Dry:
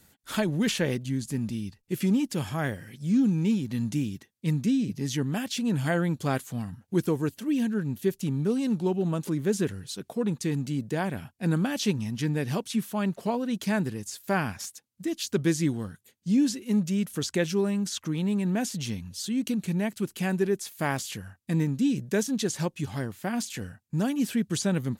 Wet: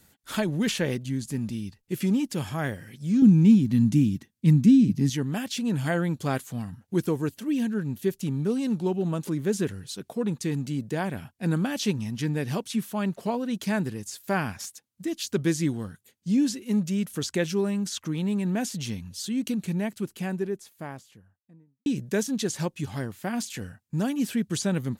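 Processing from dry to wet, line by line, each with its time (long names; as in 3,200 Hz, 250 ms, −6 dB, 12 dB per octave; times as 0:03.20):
0:03.22–0:05.10: low shelf with overshoot 340 Hz +7 dB, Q 1.5
0:19.47–0:21.86: fade out and dull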